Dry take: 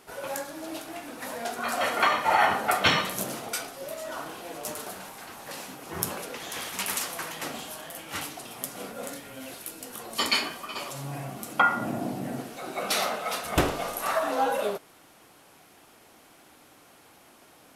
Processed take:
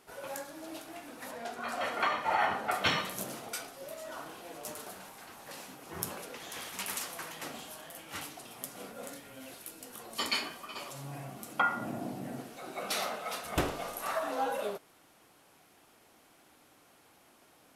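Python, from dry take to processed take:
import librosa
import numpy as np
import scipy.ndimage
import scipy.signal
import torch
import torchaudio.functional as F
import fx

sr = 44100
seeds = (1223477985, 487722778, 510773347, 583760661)

y = fx.high_shelf(x, sr, hz=7200.0, db=-9.5, at=(1.31, 2.74))
y = y * 10.0 ** (-7.0 / 20.0)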